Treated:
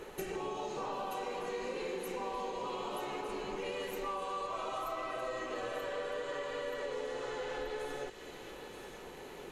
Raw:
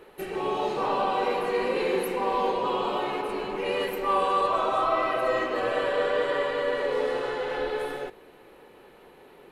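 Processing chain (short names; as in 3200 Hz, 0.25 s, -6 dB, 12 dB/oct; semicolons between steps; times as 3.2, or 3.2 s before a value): low shelf 110 Hz +7 dB; compressor 6:1, threshold -40 dBFS, peak gain reduction 18.5 dB; bell 6600 Hz +14 dB 0.53 oct; on a send: thin delay 0.93 s, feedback 54%, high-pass 2500 Hz, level -5 dB; on the sum: gain +2.5 dB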